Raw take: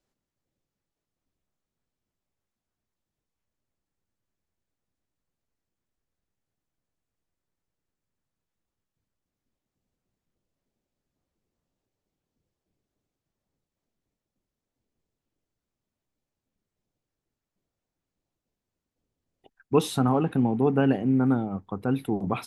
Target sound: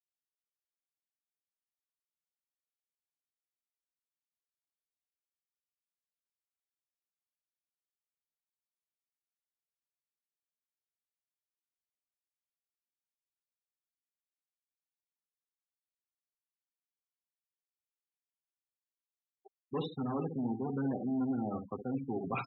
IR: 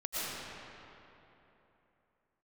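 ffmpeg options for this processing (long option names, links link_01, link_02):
-filter_complex "[0:a]flanger=delay=6.7:depth=1.4:regen=-11:speed=0.12:shape=triangular,asoftclip=type=hard:threshold=-22dB,areverse,acompressor=threshold=-39dB:ratio=6,areverse,highpass=150,lowpass=3500,asplit=2[link_01][link_02];[link_02]adelay=65,lowpass=frequency=920:poles=1,volume=-6.5dB,asplit=2[link_03][link_04];[link_04]adelay=65,lowpass=frequency=920:poles=1,volume=0.32,asplit=2[link_05][link_06];[link_06]adelay=65,lowpass=frequency=920:poles=1,volume=0.32,asplit=2[link_07][link_08];[link_08]adelay=65,lowpass=frequency=920:poles=1,volume=0.32[link_09];[link_01][link_03][link_05][link_07][link_09]amix=inputs=5:normalize=0,afftfilt=real='re*gte(hypot(re,im),0.00891)':imag='im*gte(hypot(re,im),0.00891)':win_size=1024:overlap=0.75,volume=6dB"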